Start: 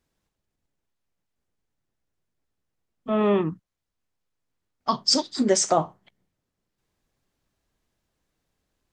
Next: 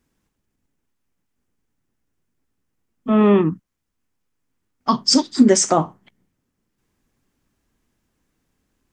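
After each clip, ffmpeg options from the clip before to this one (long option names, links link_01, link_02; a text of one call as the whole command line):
ffmpeg -i in.wav -af "equalizer=frequency=250:width_type=o:width=0.67:gain=6,equalizer=frequency=630:width_type=o:width=0.67:gain=-5,equalizer=frequency=4000:width_type=o:width=0.67:gain=-5,volume=6dB" out.wav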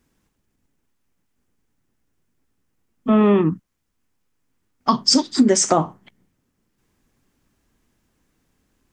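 ffmpeg -i in.wav -af "acompressor=threshold=-17dB:ratio=2.5,volume=3.5dB" out.wav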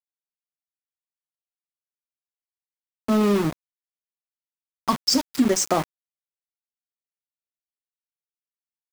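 ffmpeg -i in.wav -af "aeval=exprs='val(0)*gte(abs(val(0)),0.1)':channel_layout=same,volume=-4.5dB" out.wav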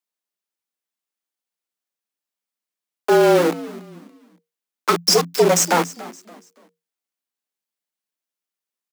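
ffmpeg -i in.wav -filter_complex "[0:a]aeval=exprs='0.531*(cos(1*acos(clip(val(0)/0.531,-1,1)))-cos(1*PI/2))+0.119*(cos(4*acos(clip(val(0)/0.531,-1,1)))-cos(4*PI/2))+0.133*(cos(5*acos(clip(val(0)/0.531,-1,1)))-cos(5*PI/2))':channel_layout=same,asplit=4[link_01][link_02][link_03][link_04];[link_02]adelay=284,afreqshift=-100,volume=-18dB[link_05];[link_03]adelay=568,afreqshift=-200,volume=-27.1dB[link_06];[link_04]adelay=852,afreqshift=-300,volume=-36.2dB[link_07];[link_01][link_05][link_06][link_07]amix=inputs=4:normalize=0,afreqshift=170" out.wav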